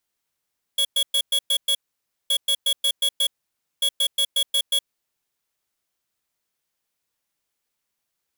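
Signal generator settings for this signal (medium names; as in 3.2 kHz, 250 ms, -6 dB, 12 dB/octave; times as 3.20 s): beep pattern square 3.35 kHz, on 0.07 s, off 0.11 s, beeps 6, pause 0.55 s, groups 3, -20 dBFS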